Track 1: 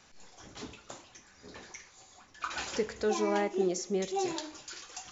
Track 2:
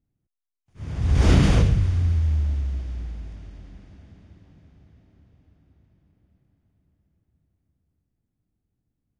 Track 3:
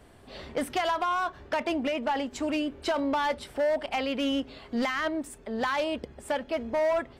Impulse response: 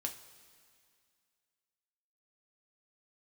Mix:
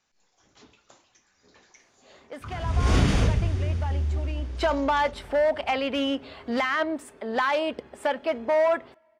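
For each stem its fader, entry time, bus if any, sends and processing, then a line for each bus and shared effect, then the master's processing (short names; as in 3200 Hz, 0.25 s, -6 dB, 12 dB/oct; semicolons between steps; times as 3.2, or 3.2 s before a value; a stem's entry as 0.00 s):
-14.0 dB, 0.00 s, no send, treble ducked by the level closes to 340 Hz, closed at -28.5 dBFS
-11.0 dB, 1.65 s, send -4.5 dB, gate with hold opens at -46 dBFS
4.33 s -14 dB -> 4.64 s -1 dB, 1.75 s, send -19.5 dB, HPF 270 Hz 6 dB/oct; high shelf 4200 Hz -10.5 dB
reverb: on, pre-delay 3 ms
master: low shelf 410 Hz -4 dB; AGC gain up to 6.5 dB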